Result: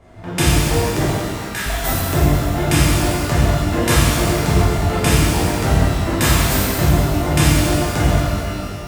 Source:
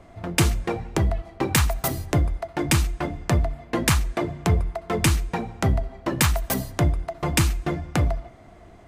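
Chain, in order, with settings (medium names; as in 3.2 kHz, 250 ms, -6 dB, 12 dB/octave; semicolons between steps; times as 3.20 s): 1.01–1.66 s: ladder high-pass 1.3 kHz, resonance 50%; pitch-shifted reverb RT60 2.2 s, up +12 st, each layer -8 dB, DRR -10 dB; trim -3.5 dB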